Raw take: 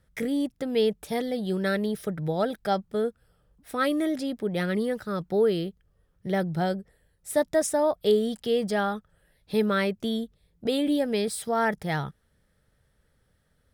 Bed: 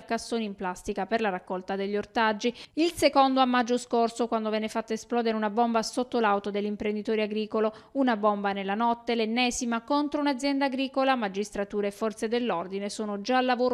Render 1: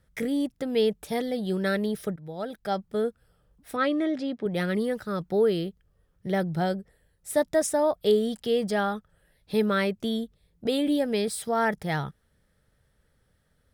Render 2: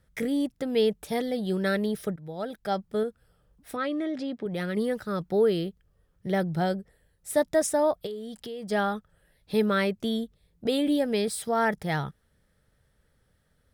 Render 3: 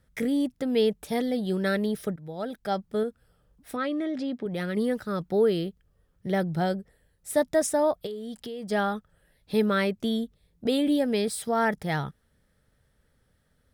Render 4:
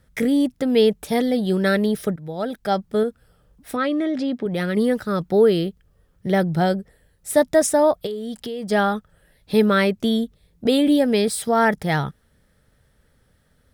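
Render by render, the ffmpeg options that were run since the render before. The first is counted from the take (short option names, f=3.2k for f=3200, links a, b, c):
-filter_complex "[0:a]asettb=1/sr,asplit=3[a][b][c];[a]atrim=end=3.764[d];[b]atrim=start=3.76:end=4.46,asetpts=PTS-STARTPTS,afade=t=in:d=0.004:c=qsin,afade=t=out:st=0.696:d=0.004:c=qsin,highpass=110,lowpass=4.1k[e];[c]atrim=start=4.456[f];[d][e]acrossfade=d=0.004:c1=hsin:c2=qsin[g];[g][f]acrossfade=d=0.004:c1=qsin:c2=hsin,asplit=2[h][i];[h]atrim=end=2.16,asetpts=PTS-STARTPTS,afade=t=out:st=2.156:d=0.004:c=hsin:silence=0.149624[j];[i]atrim=start=2.16,asetpts=PTS-STARTPTS,afade=t=in:d=0.83:silence=0.149624[k];[j][k]concat=n=2:v=0:a=1"
-filter_complex "[0:a]asettb=1/sr,asplit=3[a][b][c];[a]atrim=end=3.034[d];[b]atrim=start=3.03:end=4.77,asetpts=PTS-STARTPTS,afade=t=in:d=0.004:c=qsin,afade=t=out:st=1.736:d=0.004:c=qsin,acompressor=threshold=-29dB:ratio=2:attack=3.2:release=140:knee=1:detection=peak[e];[c]atrim=start=4.766[f];[d][e]acrossfade=d=0.004:c1=hsin:c2=qsin[g];[g][f]acrossfade=d=0.004:c1=qsin:c2=hsin,asplit=3[h][i][j];[h]afade=t=out:st=8.05:d=0.02[k];[i]acompressor=threshold=-36dB:ratio=4:attack=3.2:release=140:knee=1:detection=peak,afade=t=in:st=8.05:d=0.02,afade=t=out:st=8.7:d=0.02[l];[j]afade=t=in:st=8.7:d=0.02[m];[k][l][m]amix=inputs=3:normalize=0"
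-af "equalizer=f=250:w=5.9:g=4"
-af "volume=7dB"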